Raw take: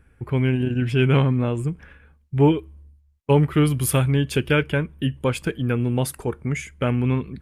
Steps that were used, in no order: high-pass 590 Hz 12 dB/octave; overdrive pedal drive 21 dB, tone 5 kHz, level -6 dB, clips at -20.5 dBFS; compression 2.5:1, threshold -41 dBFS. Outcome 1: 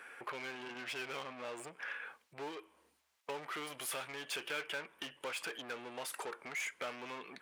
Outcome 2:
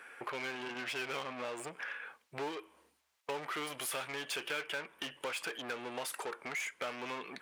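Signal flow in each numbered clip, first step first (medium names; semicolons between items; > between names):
overdrive pedal > compression > high-pass; overdrive pedal > high-pass > compression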